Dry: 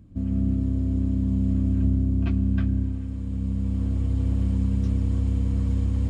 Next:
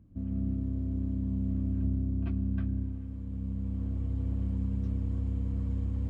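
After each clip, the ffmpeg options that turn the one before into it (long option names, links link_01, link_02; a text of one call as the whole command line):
ffmpeg -i in.wav -af "highshelf=frequency=2800:gain=-11,volume=-8dB" out.wav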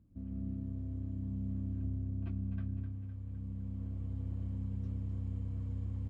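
ffmpeg -i in.wav -af "aecho=1:1:255|510|765|1020|1275|1530|1785:0.335|0.198|0.117|0.0688|0.0406|0.0239|0.0141,volume=-8dB" out.wav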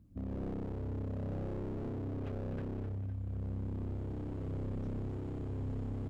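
ffmpeg -i in.wav -af "aeval=exprs='0.0133*(abs(mod(val(0)/0.0133+3,4)-2)-1)':channel_layout=same,volume=4.5dB" out.wav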